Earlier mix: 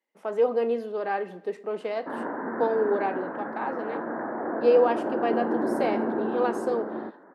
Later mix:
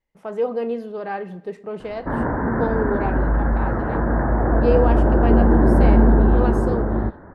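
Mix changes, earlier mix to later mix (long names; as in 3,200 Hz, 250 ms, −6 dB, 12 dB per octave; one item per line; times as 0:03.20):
background +7.5 dB
master: remove high-pass filter 250 Hz 24 dB per octave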